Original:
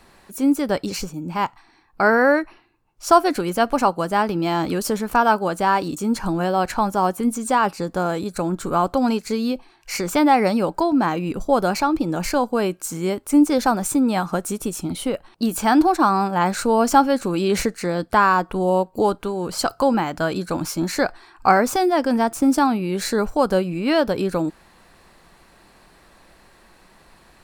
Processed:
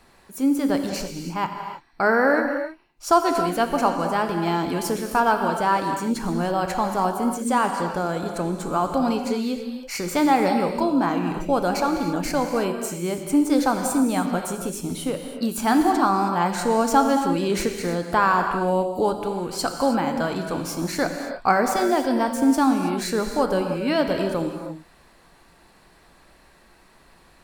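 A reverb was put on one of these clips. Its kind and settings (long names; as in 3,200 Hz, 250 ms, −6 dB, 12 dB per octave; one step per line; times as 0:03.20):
reverb whose tail is shaped and stops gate 350 ms flat, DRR 4.5 dB
level −3.5 dB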